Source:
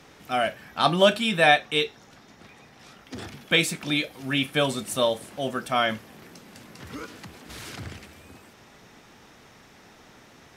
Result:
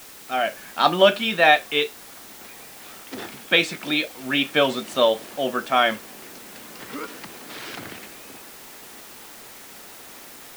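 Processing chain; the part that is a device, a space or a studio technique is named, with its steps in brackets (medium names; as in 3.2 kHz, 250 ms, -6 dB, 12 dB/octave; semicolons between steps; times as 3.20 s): dictaphone (band-pass 260–4400 Hz; level rider gain up to 5.5 dB; wow and flutter; white noise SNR 19 dB)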